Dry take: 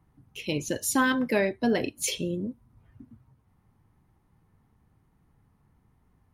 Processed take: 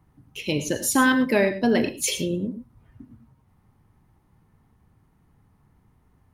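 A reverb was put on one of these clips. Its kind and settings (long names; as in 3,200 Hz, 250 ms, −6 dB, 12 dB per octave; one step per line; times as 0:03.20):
reverb whose tail is shaped and stops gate 130 ms rising, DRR 10 dB
level +4 dB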